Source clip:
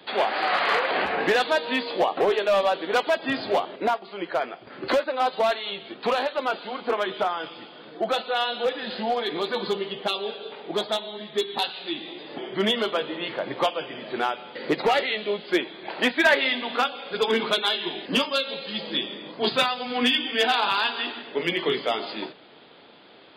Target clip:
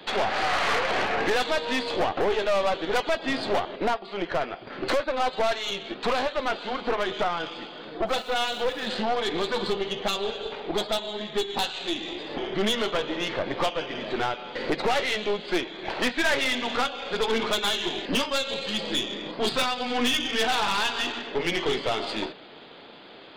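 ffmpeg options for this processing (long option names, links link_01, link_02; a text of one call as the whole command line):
ffmpeg -i in.wav -filter_complex "[0:a]asplit=2[link_01][link_02];[link_02]acompressor=threshold=-31dB:ratio=4,volume=2dB[link_03];[link_01][link_03]amix=inputs=2:normalize=0,aeval=exprs='(tanh(10*val(0)+0.6)-tanh(0.6))/10':channel_layout=same,asplit=3[link_04][link_05][link_06];[link_04]afade=type=out:start_time=8.06:duration=0.02[link_07];[link_05]aeval=exprs='sgn(val(0))*max(abs(val(0))-0.00398,0)':channel_layout=same,afade=type=in:start_time=8.06:duration=0.02,afade=type=out:start_time=8.85:duration=0.02[link_08];[link_06]afade=type=in:start_time=8.85:duration=0.02[link_09];[link_07][link_08][link_09]amix=inputs=3:normalize=0" out.wav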